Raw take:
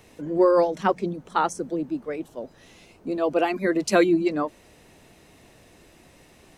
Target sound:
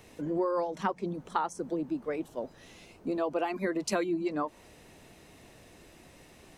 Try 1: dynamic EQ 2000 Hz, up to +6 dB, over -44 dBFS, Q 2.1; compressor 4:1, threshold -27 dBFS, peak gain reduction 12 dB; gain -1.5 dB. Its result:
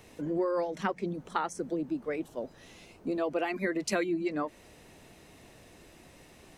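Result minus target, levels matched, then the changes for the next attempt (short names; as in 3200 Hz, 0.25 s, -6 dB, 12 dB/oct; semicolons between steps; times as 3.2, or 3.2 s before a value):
2000 Hz band +3.0 dB
change: dynamic EQ 960 Hz, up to +6 dB, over -44 dBFS, Q 2.1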